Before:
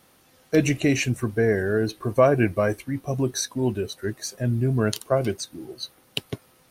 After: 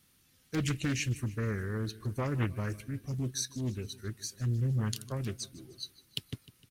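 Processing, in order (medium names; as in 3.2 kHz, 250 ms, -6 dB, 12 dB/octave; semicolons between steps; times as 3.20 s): amplifier tone stack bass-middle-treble 6-0-2; feedback delay 153 ms, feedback 53%, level -19 dB; loudspeaker Doppler distortion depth 0.5 ms; trim +8.5 dB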